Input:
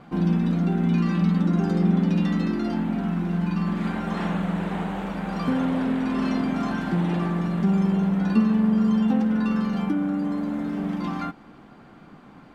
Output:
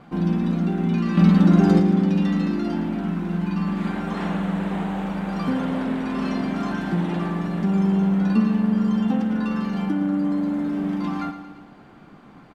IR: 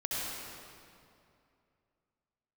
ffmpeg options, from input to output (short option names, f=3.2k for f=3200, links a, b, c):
-filter_complex "[0:a]asettb=1/sr,asplit=3[a][b][c];[a]atrim=end=1.174[d];[b]atrim=start=1.17:end=1.8,asetpts=PTS-STARTPTS,afade=t=in:d=0.004:c=qsin,afade=t=out:st=0.626:d=0.004:c=qsin,acontrast=77[e];[c]atrim=start=1.796[f];[d][e]acrossfade=d=0.004:c1=hsin:c2=qsin[g];[g][f]acrossfade=d=0.004:c1=qsin:c2=hsin,asplit=2[h][i];[i]aecho=0:1:113|226|339|452|565|678:0.282|0.161|0.0916|0.0522|0.0298|0.017[j];[h][j]amix=inputs=2:normalize=0"